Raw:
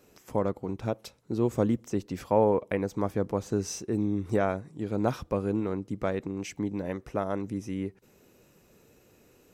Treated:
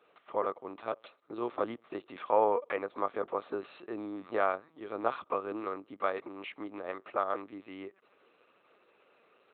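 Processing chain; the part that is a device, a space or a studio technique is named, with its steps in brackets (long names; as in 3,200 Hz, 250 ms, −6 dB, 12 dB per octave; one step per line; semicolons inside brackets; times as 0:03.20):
talking toy (linear-prediction vocoder at 8 kHz pitch kept; high-pass filter 520 Hz 12 dB per octave; parametric band 1,200 Hz +10.5 dB 0.25 octaves)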